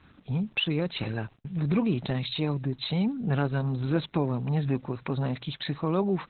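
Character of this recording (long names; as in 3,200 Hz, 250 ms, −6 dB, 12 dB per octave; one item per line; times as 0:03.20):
a quantiser's noise floor 10 bits, dither none
Opus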